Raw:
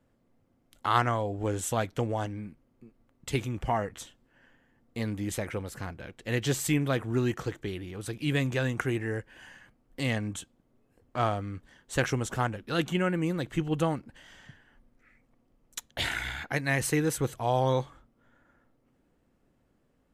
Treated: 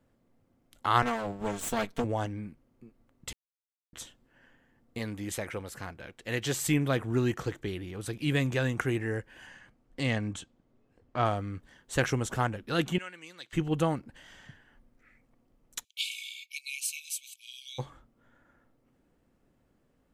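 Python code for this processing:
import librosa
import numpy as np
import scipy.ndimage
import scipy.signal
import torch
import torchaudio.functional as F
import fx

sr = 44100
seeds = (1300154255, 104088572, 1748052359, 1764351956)

y = fx.lower_of_two(x, sr, delay_ms=4.4, at=(1.02, 2.04))
y = fx.low_shelf(y, sr, hz=380.0, db=-6.0, at=(4.98, 6.62))
y = fx.lowpass(y, sr, hz=fx.line((9.46, 10000.0), (11.24, 5000.0)), slope=12, at=(9.46, 11.24), fade=0.02)
y = fx.bandpass_q(y, sr, hz=4400.0, q=1.1, at=(12.98, 13.53))
y = fx.brickwall_highpass(y, sr, low_hz=2200.0, at=(15.83, 17.78), fade=0.02)
y = fx.edit(y, sr, fx.silence(start_s=3.33, length_s=0.6), tone=tone)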